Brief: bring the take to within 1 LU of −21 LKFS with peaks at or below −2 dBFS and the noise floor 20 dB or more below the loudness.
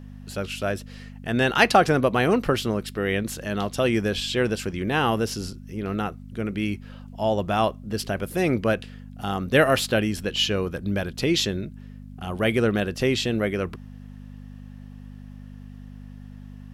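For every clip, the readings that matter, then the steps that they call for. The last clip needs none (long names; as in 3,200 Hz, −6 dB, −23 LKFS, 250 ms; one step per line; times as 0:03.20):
mains hum 50 Hz; hum harmonics up to 250 Hz; level of the hum −39 dBFS; integrated loudness −24.5 LKFS; sample peak −3.0 dBFS; target loudness −21.0 LKFS
→ hum removal 50 Hz, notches 5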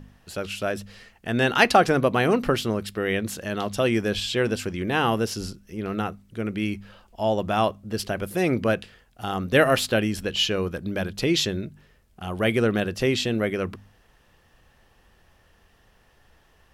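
mains hum none found; integrated loudness −24.5 LKFS; sample peak −3.0 dBFS; target loudness −21.0 LKFS
→ level +3.5 dB
brickwall limiter −2 dBFS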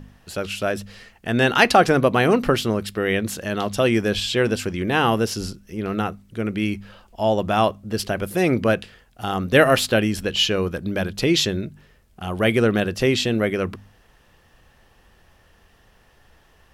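integrated loudness −21.0 LKFS; sample peak −2.0 dBFS; background noise floor −56 dBFS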